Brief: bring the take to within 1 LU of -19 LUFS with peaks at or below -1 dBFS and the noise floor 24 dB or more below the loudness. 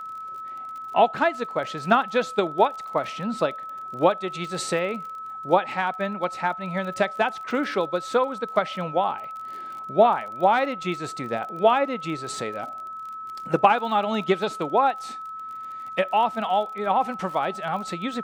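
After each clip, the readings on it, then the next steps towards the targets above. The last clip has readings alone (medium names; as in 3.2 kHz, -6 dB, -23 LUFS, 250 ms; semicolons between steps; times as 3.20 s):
tick rate 32 per s; steady tone 1.3 kHz; tone level -33 dBFS; loudness -24.5 LUFS; peak level -3.0 dBFS; loudness target -19.0 LUFS
-> de-click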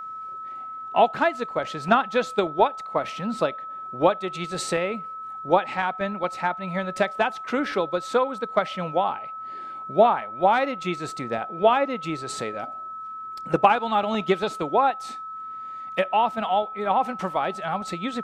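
tick rate 0 per s; steady tone 1.3 kHz; tone level -33 dBFS
-> band-stop 1.3 kHz, Q 30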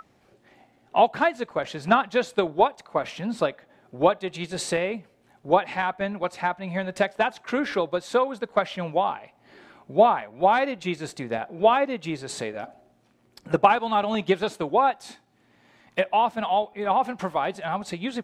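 steady tone not found; loudness -25.0 LUFS; peak level -3.0 dBFS; loudness target -19.0 LUFS
-> trim +6 dB; peak limiter -1 dBFS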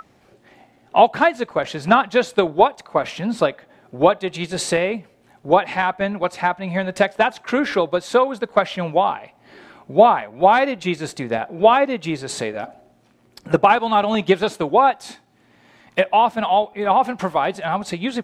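loudness -19.0 LUFS; peak level -1.0 dBFS; noise floor -56 dBFS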